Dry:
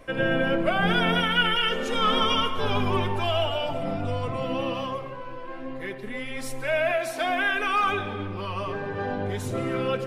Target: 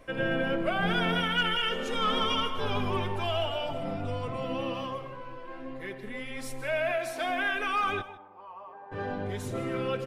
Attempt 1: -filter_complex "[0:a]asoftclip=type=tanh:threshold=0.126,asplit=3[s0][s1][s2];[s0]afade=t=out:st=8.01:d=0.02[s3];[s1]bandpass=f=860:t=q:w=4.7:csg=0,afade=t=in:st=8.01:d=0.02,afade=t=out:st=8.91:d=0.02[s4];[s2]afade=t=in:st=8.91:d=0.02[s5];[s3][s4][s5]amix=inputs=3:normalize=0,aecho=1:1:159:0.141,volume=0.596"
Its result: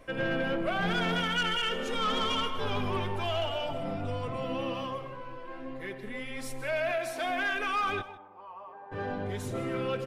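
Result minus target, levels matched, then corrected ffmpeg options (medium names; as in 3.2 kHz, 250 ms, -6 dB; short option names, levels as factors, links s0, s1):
saturation: distortion +13 dB
-filter_complex "[0:a]asoftclip=type=tanh:threshold=0.335,asplit=3[s0][s1][s2];[s0]afade=t=out:st=8.01:d=0.02[s3];[s1]bandpass=f=860:t=q:w=4.7:csg=0,afade=t=in:st=8.01:d=0.02,afade=t=out:st=8.91:d=0.02[s4];[s2]afade=t=in:st=8.91:d=0.02[s5];[s3][s4][s5]amix=inputs=3:normalize=0,aecho=1:1:159:0.141,volume=0.596"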